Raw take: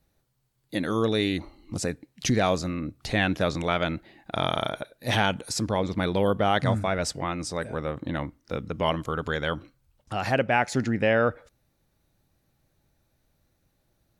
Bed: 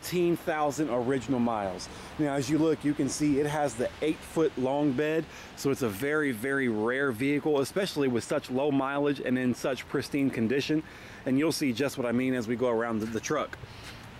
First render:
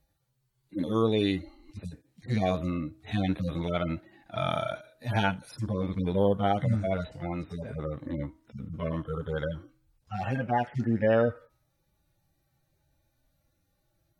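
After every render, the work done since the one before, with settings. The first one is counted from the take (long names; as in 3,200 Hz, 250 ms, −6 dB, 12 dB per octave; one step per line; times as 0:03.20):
harmonic-percussive split with one part muted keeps harmonic
hum removal 317.5 Hz, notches 4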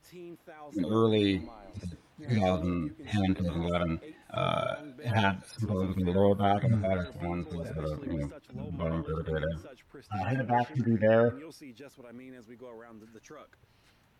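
mix in bed −20 dB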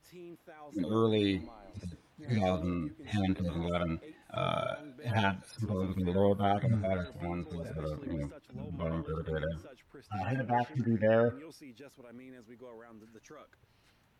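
level −3 dB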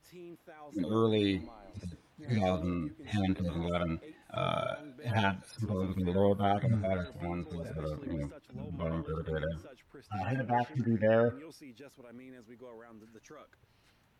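no processing that can be heard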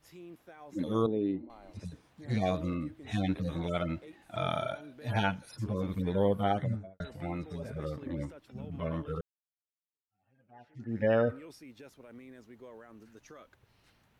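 0:01.06–0:01.50: resonant band-pass 300 Hz, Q 1.2
0:06.52–0:07.00: fade out and dull
0:09.21–0:11.03: fade in exponential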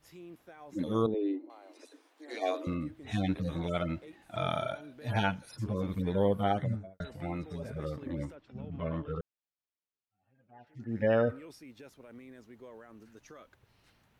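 0:01.14–0:02.67: Butterworth high-pass 270 Hz 96 dB per octave
0:08.35–0:10.67: high-frequency loss of the air 130 metres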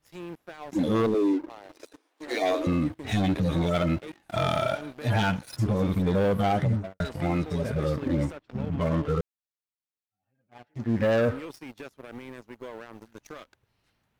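leveller curve on the samples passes 3
brickwall limiter −18.5 dBFS, peak gain reduction 4.5 dB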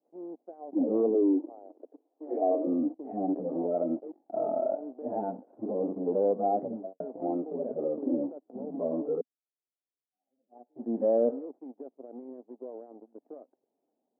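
elliptic band-pass filter 250–740 Hz, stop band 80 dB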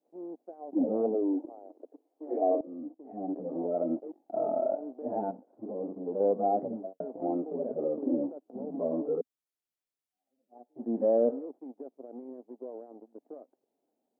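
0:00.84–0:01.45: comb filter 1.4 ms, depth 57%
0:02.61–0:03.97: fade in, from −18.5 dB
0:05.31–0:06.20: clip gain −5.5 dB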